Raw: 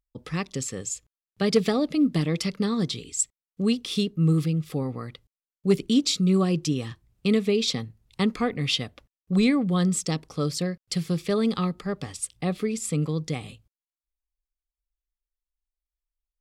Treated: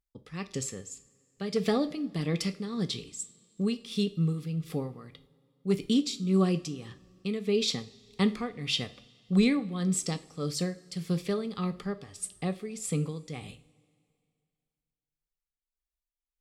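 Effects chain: tremolo 1.7 Hz, depth 68%; two-slope reverb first 0.35 s, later 2.3 s, from -20 dB, DRR 9.5 dB; gain -3 dB

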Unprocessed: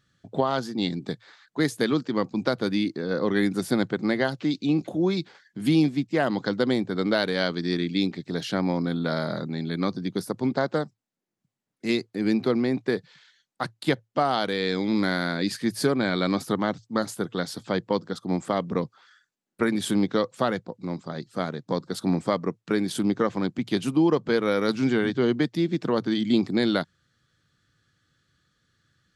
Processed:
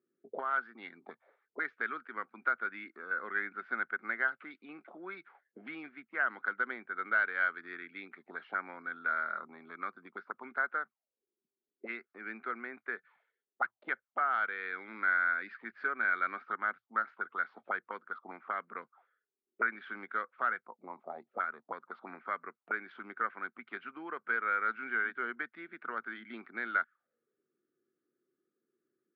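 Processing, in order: speaker cabinet 200–3200 Hz, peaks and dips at 230 Hz +8 dB, 390 Hz +6 dB, 680 Hz +3 dB, 1300 Hz +7 dB, 2200 Hz +9 dB; auto-wah 370–1500 Hz, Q 6.3, up, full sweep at -21.5 dBFS

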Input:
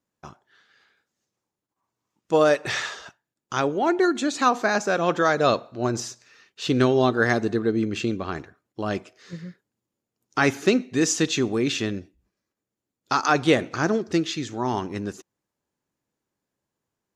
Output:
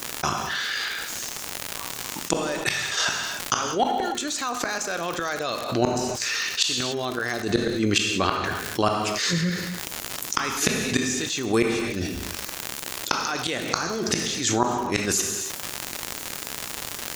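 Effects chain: tilt +3.5 dB/oct; flipped gate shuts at -16 dBFS, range -34 dB; in parallel at +1.5 dB: level quantiser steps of 15 dB; on the sum: low shelf 170 Hz +9.5 dB; non-linear reverb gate 0.32 s falling, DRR 10.5 dB; crackle 130/s -48 dBFS; fast leveller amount 70%

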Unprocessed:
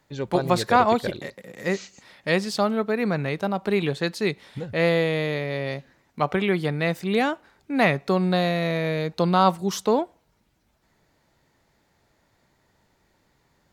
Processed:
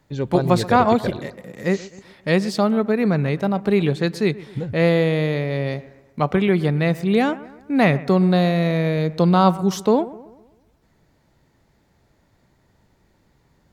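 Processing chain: low shelf 400 Hz +8.5 dB; on a send: analogue delay 0.128 s, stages 2048, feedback 46%, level -18 dB

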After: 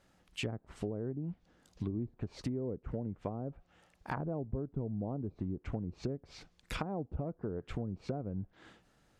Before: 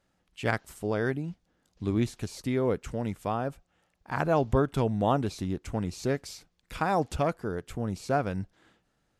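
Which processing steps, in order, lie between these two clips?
treble ducked by the level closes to 420 Hz, closed at -26 dBFS; compressor 5:1, threshold -40 dBFS, peak gain reduction 17 dB; gain +5 dB

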